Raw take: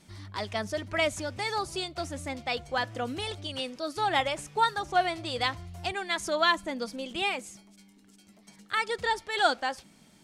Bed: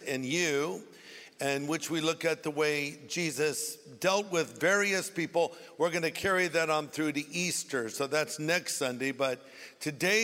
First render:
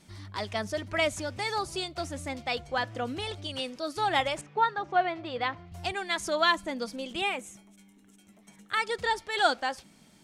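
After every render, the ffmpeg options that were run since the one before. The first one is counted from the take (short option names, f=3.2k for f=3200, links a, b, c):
-filter_complex "[0:a]asettb=1/sr,asplit=3[a][b][c];[a]atrim=end=2.614[d];[b]atrim=start=2.61:end=3.39,asetpts=PTS-STARTPTS,afade=t=in:d=0.004:c=qsin,afade=t=out:st=0.776:d=0.004:c=qsin,highshelf=f=6.7k:g=-6[e];[c]atrim=start=3.386[f];[d][e]acrossfade=d=0.004:c1=hsin:c2=qsin[g];[g][f]acrossfade=d=0.004:c1=qsin:c2=hsin,asettb=1/sr,asplit=3[h][i][j];[h]atrim=end=4.414[k];[i]atrim=start=4.41:end=5.72,asetpts=PTS-STARTPTS,afade=t=in:d=0.004:c=qsin,afade=t=out:st=1.306:d=0.004:c=qsin,highpass=140,lowpass=2.4k[l];[j]atrim=start=5.716[m];[k][l]acrossfade=d=0.004:c1=hsin:c2=qsin[n];[n][m]acrossfade=d=0.004:c1=qsin:c2=hsin,asettb=1/sr,asplit=3[o][p][q];[o]atrim=end=7.214[r];[p]atrim=start=7.21:end=8.73,asetpts=PTS-STARTPTS,afade=t=in:d=0.004:c=qsin,afade=t=out:st=1.516:d=0.004:c=qsin,equalizer=f=4.7k:t=o:w=0.33:g=-14.5[s];[q]atrim=start=8.726[t];[r][s]acrossfade=d=0.004:c1=hsin:c2=qsin[u];[u][t]acrossfade=d=0.004:c1=qsin:c2=hsin"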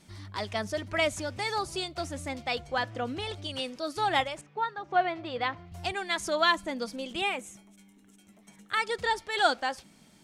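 -filter_complex "[0:a]asettb=1/sr,asplit=3[a][b][c];[a]atrim=end=2.904[d];[b]atrim=start=2.9:end=3.3,asetpts=PTS-STARTPTS,afade=t=in:d=0.004:c=qsin,afade=t=out:st=0.396:d=0.004:c=qsin,highshelf=f=8.3k:g=-8[e];[c]atrim=start=3.296[f];[d][e]acrossfade=d=0.004:c1=hsin:c2=qsin[g];[g][f]acrossfade=d=0.004:c1=qsin:c2=hsin,asplit=3[h][i][j];[h]atrim=end=4.242[k];[i]atrim=start=4.238:end=4.912,asetpts=PTS-STARTPTS,volume=-5.5dB[l];[j]atrim=start=4.908[m];[k][l]acrossfade=d=0.004:c1=hsin:c2=hsin[n];[n][m]acrossfade=d=0.004:c1=hsin:c2=hsin"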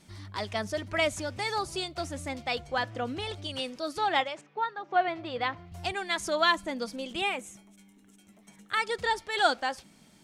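-filter_complex "[0:a]asettb=1/sr,asplit=3[a][b][c];[a]atrim=end=3.984[d];[b]atrim=start=3.98:end=5.08,asetpts=PTS-STARTPTS,afade=t=in:d=0.004:c=qsin,afade=t=out:st=1.096:d=0.004:c=qsin,highpass=220,lowpass=5.8k[e];[c]atrim=start=5.076[f];[d][e]acrossfade=d=0.004:c1=hsin:c2=qsin[g];[g][f]acrossfade=d=0.004:c1=qsin:c2=hsin"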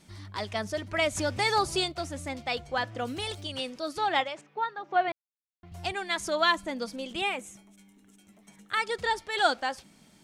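-filter_complex "[0:a]asplit=3[a][b][c];[a]afade=t=out:st=2.98:d=0.02[d];[b]aemphasis=mode=production:type=50fm,afade=t=in:st=2.98:d=0.02,afade=t=out:st=3.42:d=0.02[e];[c]afade=t=in:st=3.42:d=0.02[f];[d][e][f]amix=inputs=3:normalize=0,asplit=5[g][h][i][j][k];[g]atrim=end=1.152[l];[h]atrim=start=1.148:end=1.922,asetpts=PTS-STARTPTS,volume=5.5dB[m];[i]atrim=start=1.918:end=5.12,asetpts=PTS-STARTPTS,afade=t=out:st=3.198:d=0.004:c=hsin[n];[j]atrim=start=5.12:end=5.63,asetpts=PTS-STARTPTS,volume=0[o];[k]atrim=start=5.63,asetpts=PTS-STARTPTS,afade=t=in:d=0.004:c=hsin[p];[l][m]acrossfade=d=0.004:c1=hsin:c2=hsin[q];[n][o][p]concat=n=3:v=0:a=1[r];[q][r]acrossfade=d=0.004:c1=hsin:c2=hsin"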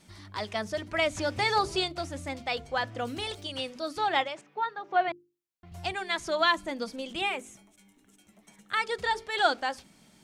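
-filter_complex "[0:a]bandreject=f=50:t=h:w=6,bandreject=f=100:t=h:w=6,bandreject=f=150:t=h:w=6,bandreject=f=200:t=h:w=6,bandreject=f=250:t=h:w=6,bandreject=f=300:t=h:w=6,bandreject=f=350:t=h:w=6,bandreject=f=400:t=h:w=6,bandreject=f=450:t=h:w=6,acrossover=split=5800[a][b];[b]acompressor=threshold=-48dB:ratio=4:attack=1:release=60[c];[a][c]amix=inputs=2:normalize=0"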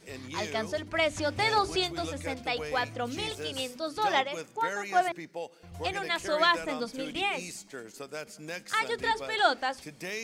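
-filter_complex "[1:a]volume=-10dB[a];[0:a][a]amix=inputs=2:normalize=0"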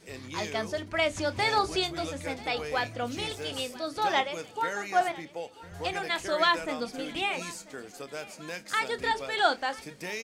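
-filter_complex "[0:a]asplit=2[a][b];[b]adelay=29,volume=-14dB[c];[a][c]amix=inputs=2:normalize=0,aecho=1:1:989|1978|2967|3956:0.1|0.048|0.023|0.0111"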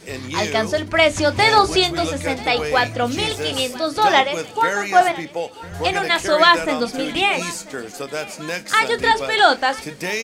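-af "volume=12dB,alimiter=limit=-1dB:level=0:latency=1"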